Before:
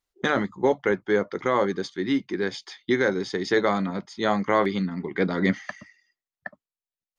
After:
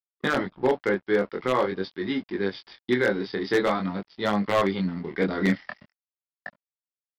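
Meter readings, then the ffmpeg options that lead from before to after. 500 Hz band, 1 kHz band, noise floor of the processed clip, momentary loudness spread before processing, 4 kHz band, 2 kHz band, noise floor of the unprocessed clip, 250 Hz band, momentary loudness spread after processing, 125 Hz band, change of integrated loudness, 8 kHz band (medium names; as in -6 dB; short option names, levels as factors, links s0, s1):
-1.0 dB, -1.5 dB, under -85 dBFS, 10 LU, -0.5 dB, -1.0 dB, under -85 dBFS, -1.0 dB, 9 LU, -0.5 dB, -1.0 dB, no reading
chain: -af "aresample=11025,aeval=exprs='sgn(val(0))*max(abs(val(0))-0.00562,0)':c=same,aresample=44100,flanger=delay=19.5:depth=6.1:speed=0.46,aeval=exprs='0.168*(abs(mod(val(0)/0.168+3,4)-2)-1)':c=same,volume=1.33"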